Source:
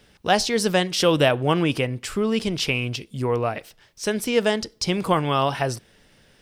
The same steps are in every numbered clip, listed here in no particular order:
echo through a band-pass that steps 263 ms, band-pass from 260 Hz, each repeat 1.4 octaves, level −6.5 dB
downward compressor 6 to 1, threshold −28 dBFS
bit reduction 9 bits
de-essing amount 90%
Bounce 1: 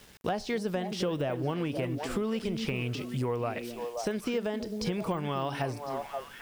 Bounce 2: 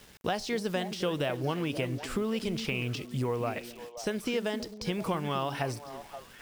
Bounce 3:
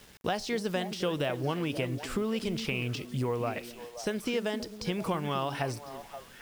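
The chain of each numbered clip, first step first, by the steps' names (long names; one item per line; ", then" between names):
de-essing, then echo through a band-pass that steps, then bit reduction, then downward compressor
downward compressor, then de-essing, then bit reduction, then echo through a band-pass that steps
downward compressor, then de-essing, then echo through a band-pass that steps, then bit reduction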